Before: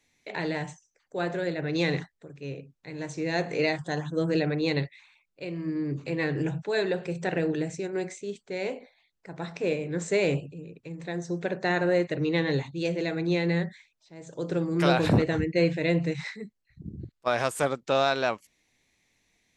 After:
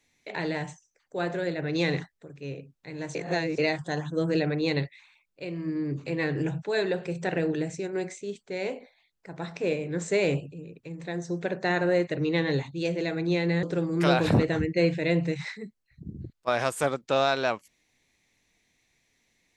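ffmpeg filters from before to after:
-filter_complex "[0:a]asplit=4[a][b][c][d];[a]atrim=end=3.152[e];[b]atrim=start=3.148:end=3.582,asetpts=PTS-STARTPTS,areverse[f];[c]atrim=start=3.578:end=13.632[g];[d]atrim=start=14.418[h];[e][f]acrossfade=d=0.004:c1=hsin:c2=hsin[i];[i][g]acrossfade=d=0.004:c1=hsin:c2=hsin[j];[j][h]acrossfade=d=0.004:c1=hsin:c2=hsin"

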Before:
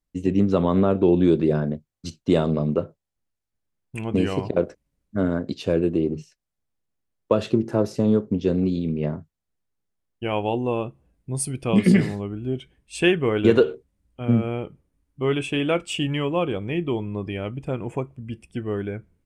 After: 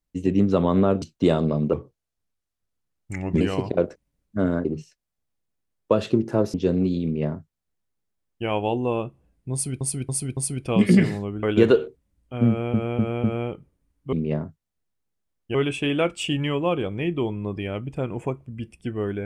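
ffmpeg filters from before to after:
-filter_complex "[0:a]asplit=15[a][b][c][d][e][f][g][h][i][j][k][l][m][n][o];[a]atrim=end=1.022[p];[b]atrim=start=2.078:end=2.794[q];[c]atrim=start=2.79:end=4.2,asetpts=PTS-STARTPTS,asetrate=37044,aresample=44100[r];[d]atrim=start=4.196:end=5.442[s];[e]atrim=start=6.048:end=7.942[t];[f]atrim=start=8.348:end=11.622[u];[g]atrim=start=11.338:end=11.622[v];[h]atrim=start=11.338:end=11.622[w];[i]atrim=start=11.338:end=12.402[x];[j]atrim=start=13.298:end=14.612[y];[k]atrim=start=14.358:end=14.612[z];[l]atrim=start=14.358:end=14.612[aa];[m]atrim=start=14.358:end=15.252[ab];[n]atrim=start=8.848:end=10.272[ac];[o]atrim=start=15.248[ad];[p][q]acrossfade=d=0.004:c1=hsin:c2=hsin[ae];[ae][r]acrossfade=d=0.004:c1=hsin:c2=hsin[af];[af][s]acrossfade=d=0.004:c1=hsin:c2=hsin[ag];[ag][t]acrossfade=d=0.004:c1=hsin:c2=hsin[ah];[ah][u]acrossfade=d=0.004:c1=hsin:c2=hsin[ai];[ai][v]acrossfade=d=0.004:c1=hsin:c2=hsin[aj];[aj][w]acrossfade=d=0.004:c1=hsin:c2=hsin[ak];[ak][x]acrossfade=d=0.004:c1=hsin:c2=hsin[al];[al][y]acrossfade=d=0.004:c1=hsin:c2=hsin[am];[am][z]acrossfade=d=0.004:c1=hsin:c2=hsin[an];[an][aa]acrossfade=d=0.004:c1=hsin:c2=hsin[ao];[ao][ab]acrossfade=d=0.004:c1=hsin:c2=hsin[ap];[ap][ac]acrossfade=d=0.004:c1=hsin:c2=hsin[aq];[aq][ad]acrossfade=d=0.004:c1=hsin:c2=hsin"

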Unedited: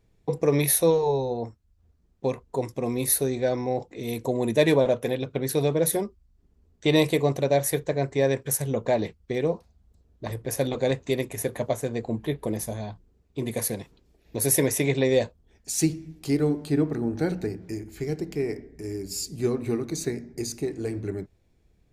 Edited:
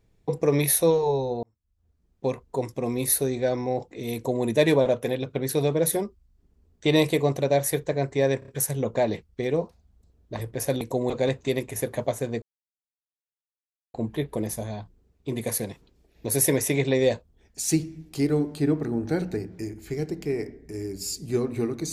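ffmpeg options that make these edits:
-filter_complex "[0:a]asplit=8[a][b][c][d][e][f][g][h];[a]atrim=end=1.43,asetpts=PTS-STARTPTS,afade=t=out:st=1.426:d=0.004:c=hsin[i];[b]atrim=start=1.43:end=8.422,asetpts=PTS-STARTPTS,afade=t=in:d=0.85[j];[c]atrim=start=8.388:end=8.422[k];[d]atrim=start=8.388:end=8.422[l];[e]atrim=start=8.388:end=10.722[m];[f]atrim=start=4.148:end=4.442[n];[g]atrim=start=10.718:end=12.04,asetpts=PTS-STARTPTS,afade=t=out:st=1.318:d=0.004:c=hsin,apad=pad_dur=1.52[o];[h]atrim=start=12.04,asetpts=PTS-STARTPTS,afade=t=in:d=0.004:c=hsin[p];[i][j]concat=n=2:v=0:a=1[q];[q][k]acrossfade=d=0.004:c1=hsin:c2=hsin[r];[r][l]acrossfade=d=0.004:c1=hsin:c2=hsin[s];[s][m]acrossfade=d=0.004:c1=hsin:c2=hsin[t];[t][n]acrossfade=d=0.004:c1=hsin:c2=hsin[u];[o][p]concat=n=2:v=0:a=1[v];[u][v]acrossfade=d=0.004:c1=hsin:c2=hsin"

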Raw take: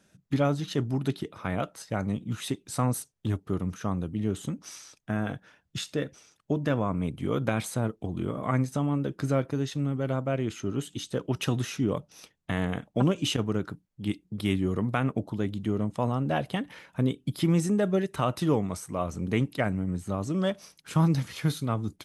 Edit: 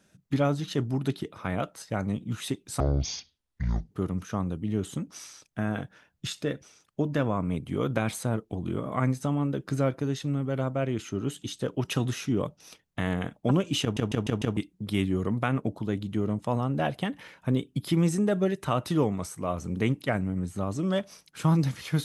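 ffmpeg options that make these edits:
-filter_complex "[0:a]asplit=8[a][b][c][d][e][f][g][h];[a]atrim=end=2.804[i];[b]atrim=start=2.8:end=3.42,asetpts=PTS-STARTPTS,asetrate=24696,aresample=44100[j];[c]atrim=start=3.416:end=13.482[k];[d]atrim=start=13.328:end=13.482[l];[e]atrim=start=13.328:end=13.482[m];[f]atrim=start=13.328:end=13.482[n];[g]atrim=start=13.328:end=13.482[o];[h]atrim=start=14.078[p];[i][j]acrossfade=d=0.004:c1=hsin:c2=hsin[q];[q][k]acrossfade=d=0.004:c1=hsin:c2=hsin[r];[r][l]acrossfade=d=0.004:c1=hsin:c2=hsin[s];[s][m]acrossfade=d=0.004:c1=hsin:c2=hsin[t];[t][n]acrossfade=d=0.004:c1=hsin:c2=hsin[u];[u][o]acrossfade=d=0.004:c1=hsin:c2=hsin[v];[v][p]acrossfade=d=0.004:c1=hsin:c2=hsin"

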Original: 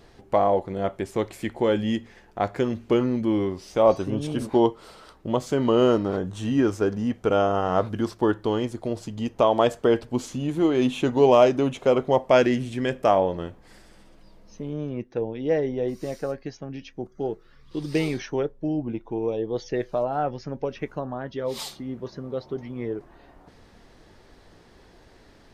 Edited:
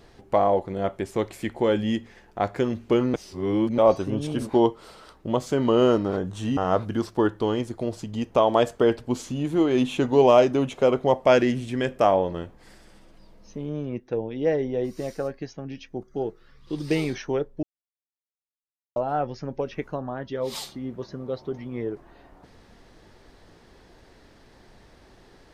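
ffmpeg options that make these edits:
-filter_complex "[0:a]asplit=6[a][b][c][d][e][f];[a]atrim=end=3.142[g];[b]atrim=start=3.138:end=3.782,asetpts=PTS-STARTPTS,areverse[h];[c]atrim=start=3.778:end=6.572[i];[d]atrim=start=7.608:end=18.67,asetpts=PTS-STARTPTS,afade=t=out:st=11.058:d=0.004:c=hsin[j];[e]atrim=start=18.67:end=20,asetpts=PTS-STARTPTS,volume=0[k];[f]atrim=start=20,asetpts=PTS-STARTPTS,afade=t=in:d=0.004:c=hsin[l];[g][h]acrossfade=d=0.004:c1=hsin:c2=hsin[m];[m][i]acrossfade=d=0.004:c1=hsin:c2=hsin[n];[j][k][l]concat=n=3:v=0:a=1[o];[n][o]acrossfade=d=0.004:c1=hsin:c2=hsin"

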